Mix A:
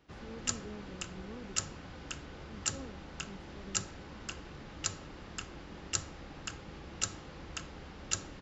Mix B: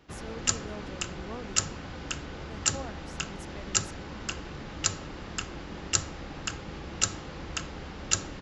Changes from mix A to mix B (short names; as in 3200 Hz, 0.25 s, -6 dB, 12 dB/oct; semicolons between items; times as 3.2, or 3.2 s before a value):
speech: remove running mean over 59 samples; background +7.5 dB